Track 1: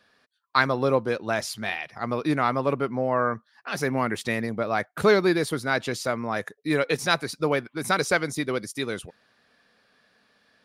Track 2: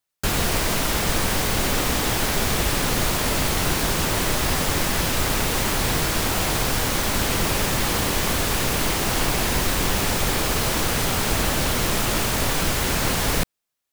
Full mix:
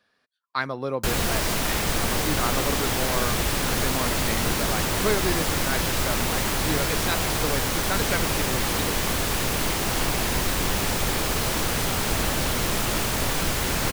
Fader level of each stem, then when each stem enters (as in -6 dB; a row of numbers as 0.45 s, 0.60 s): -6.0 dB, -2.5 dB; 0.00 s, 0.80 s